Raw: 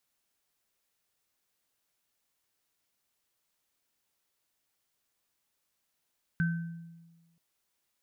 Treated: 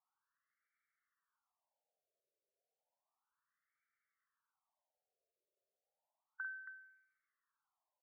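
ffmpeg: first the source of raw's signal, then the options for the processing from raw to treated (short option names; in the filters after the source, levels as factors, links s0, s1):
-f lavfi -i "aevalsrc='0.0631*pow(10,-3*t/1.31)*sin(2*PI*167*t)+0.0316*pow(10,-3*t/0.63)*sin(2*PI*1540*t)':d=0.98:s=44100"
-af "acompressor=threshold=0.02:ratio=6,aecho=1:1:46.65|274.1:0.447|0.282,afftfilt=real='re*between(b*sr/1024,480*pow(1700/480,0.5+0.5*sin(2*PI*0.32*pts/sr))/1.41,480*pow(1700/480,0.5+0.5*sin(2*PI*0.32*pts/sr))*1.41)':imag='im*between(b*sr/1024,480*pow(1700/480,0.5+0.5*sin(2*PI*0.32*pts/sr))/1.41,480*pow(1700/480,0.5+0.5*sin(2*PI*0.32*pts/sr))*1.41)':win_size=1024:overlap=0.75"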